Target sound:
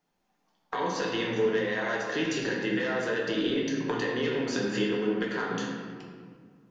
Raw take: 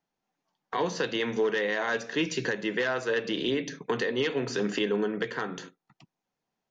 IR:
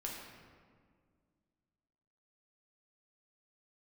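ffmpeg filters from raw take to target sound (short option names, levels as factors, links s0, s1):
-filter_complex "[0:a]acompressor=threshold=0.0178:ratio=5[s0];[1:a]atrim=start_sample=2205[s1];[s0][s1]afir=irnorm=-1:irlink=0,volume=2.66"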